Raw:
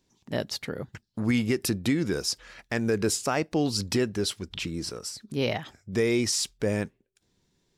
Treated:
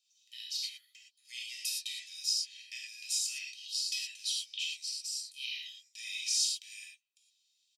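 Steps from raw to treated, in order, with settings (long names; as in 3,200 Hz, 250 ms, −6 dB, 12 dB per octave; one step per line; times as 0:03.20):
in parallel at −2 dB: downward compressor, threshold −37 dBFS, peak gain reduction 15.5 dB
on the sum: Butterworth high-pass 2,600 Hz 48 dB per octave
high-shelf EQ 9,700 Hz −10.5 dB
comb filter 1.6 ms, depth 70%
reverb whose tail is shaped and stops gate 140 ms flat, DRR −4 dB
level −7.5 dB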